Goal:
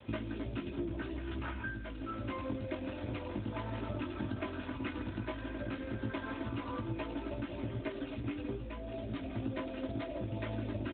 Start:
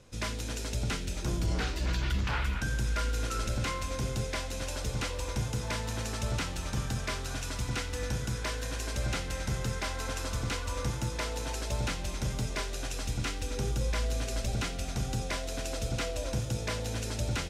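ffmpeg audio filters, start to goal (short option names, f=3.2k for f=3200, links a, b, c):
-af "adynamicequalizer=threshold=0.00178:dfrequency=300:dqfactor=2.3:tfrequency=300:tqfactor=2.3:attack=5:release=100:ratio=0.375:range=3:mode=boostabove:tftype=bell,acontrast=30,highshelf=f=2.2k:g=-6.5,aecho=1:1:776|1552|2328:0.075|0.0352|0.0166,atempo=1.6,aecho=1:1:3.2:0.68,flanger=delay=17.5:depth=2.4:speed=0.13,acompressor=threshold=-35dB:ratio=20,acrusher=bits=9:mix=0:aa=0.000001,volume=5.5dB" -ar 8000 -c:a libopencore_amrnb -b:a 12200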